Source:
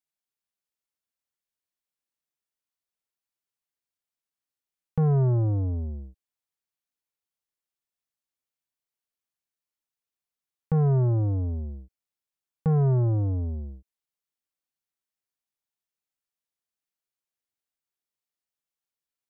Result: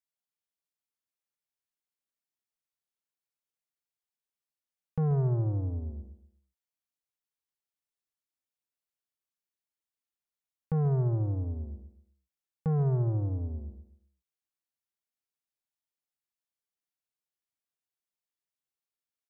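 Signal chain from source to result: feedback delay 134 ms, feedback 31%, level -11.5 dB; trim -5.5 dB

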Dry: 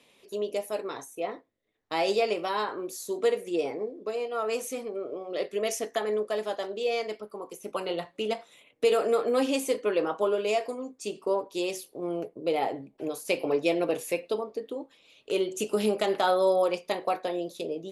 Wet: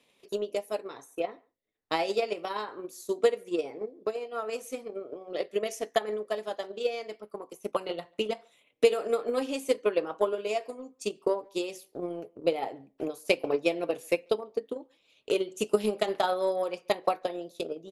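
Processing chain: speakerphone echo 140 ms, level -24 dB; transient shaper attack +11 dB, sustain -2 dB; trim -6.5 dB

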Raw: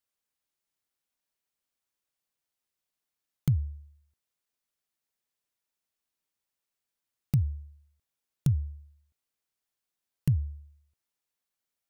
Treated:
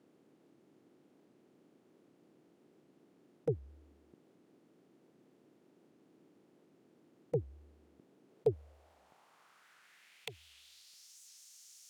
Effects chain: spectral levelling over time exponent 0.6; high-pass 200 Hz 12 dB/octave; sine folder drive 9 dB, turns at -19.5 dBFS; band-pass sweep 330 Hz -> 6.1 kHz, 8.19–11.18 s; treble shelf 4.9 kHz +4.5 dB; warped record 78 rpm, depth 160 cents; trim +3 dB

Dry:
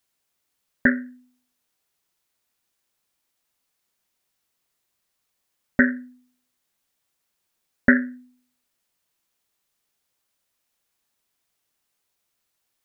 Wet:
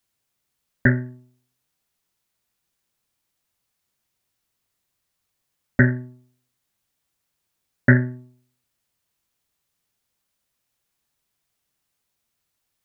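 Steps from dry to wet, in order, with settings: octave divider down 1 oct, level +4 dB; trim -1 dB

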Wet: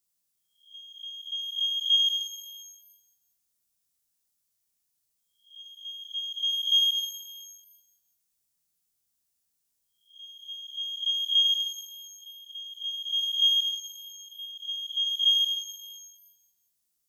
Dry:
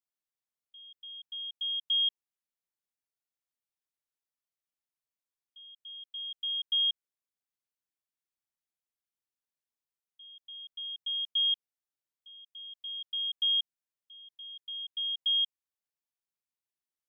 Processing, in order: reverse spectral sustain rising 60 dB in 0.42 s; tone controls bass +10 dB, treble +14 dB; pitch-shifted reverb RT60 1.1 s, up +12 st, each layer -8 dB, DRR 2.5 dB

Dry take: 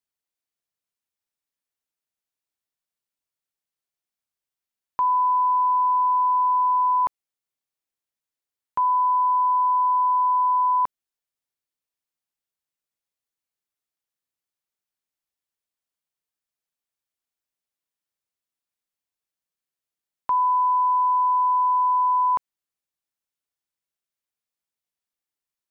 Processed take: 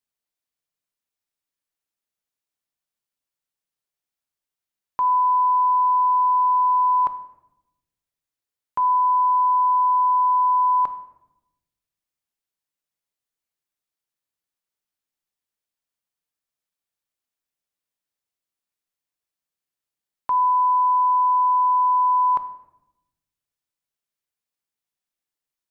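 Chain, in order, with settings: simulated room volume 330 m³, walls mixed, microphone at 0.4 m

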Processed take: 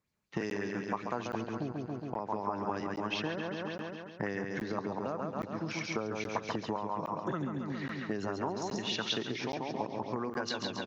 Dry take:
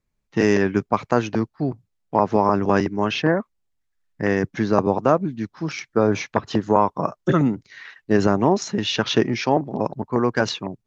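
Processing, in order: in parallel at -2 dB: peak limiter -10.5 dBFS, peak gain reduction 7.5 dB; on the sum: high-pass 90 Hz; on a send: feedback delay 137 ms, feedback 57%, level -5 dB; on the sum: compression 8:1, threshold -25 dBFS, peak gain reduction 17.5 dB; crackling interface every 0.82 s, samples 512, zero, from 0.50 s; sweeping bell 5.2 Hz 850–5000 Hz +8 dB; trim -8 dB

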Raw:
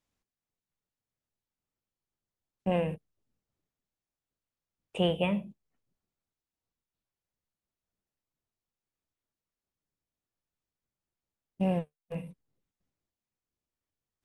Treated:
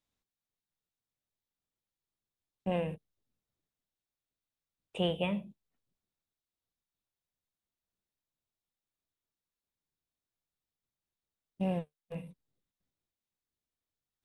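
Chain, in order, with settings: peaking EQ 3.7 kHz +6 dB 0.33 oct; trim -4 dB

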